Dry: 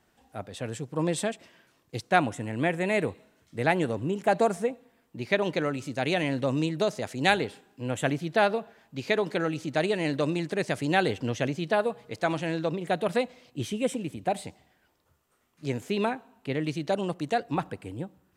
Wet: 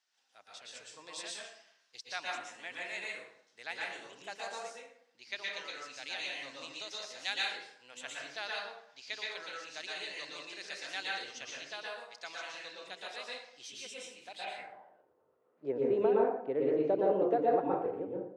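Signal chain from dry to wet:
dense smooth reverb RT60 0.7 s, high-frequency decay 0.6×, pre-delay 105 ms, DRR −4 dB
band-pass filter sweep 5,400 Hz → 440 Hz, 0:14.30–0:15.06
mid-hump overdrive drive 9 dB, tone 2,300 Hz, clips at −12.5 dBFS

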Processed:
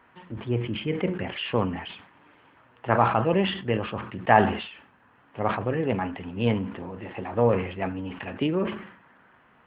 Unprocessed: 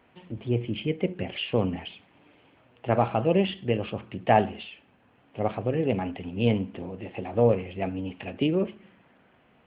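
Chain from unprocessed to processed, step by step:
flat-topped bell 1,300 Hz +9 dB 1.3 octaves
level that may fall only so fast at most 86 dB per second
level −1 dB

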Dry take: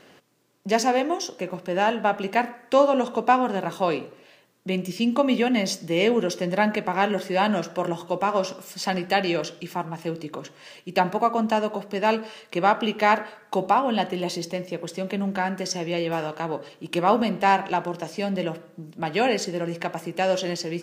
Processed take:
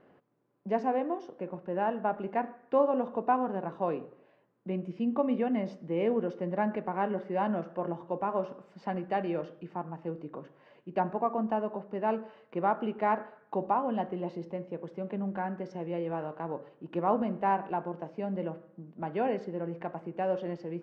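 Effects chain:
low-pass filter 1,200 Hz 12 dB per octave
level −7 dB

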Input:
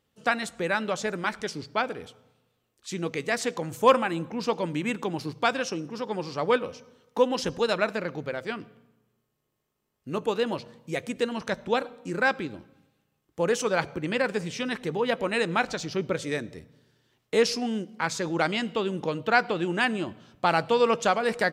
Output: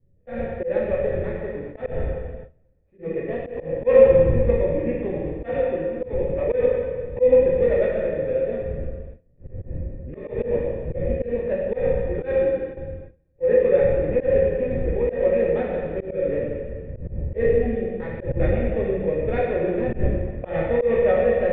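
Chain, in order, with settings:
running median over 25 samples
wind on the microphone 92 Hz −31 dBFS
low-shelf EQ 470 Hz +10.5 dB
dense smooth reverb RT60 1.7 s, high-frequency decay 0.95×, DRR −5 dB
noise gate with hold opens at −14 dBFS
formant resonators in series e
high-shelf EQ 2,600 Hz +11.5 dB
volume swells 125 ms
level +5 dB

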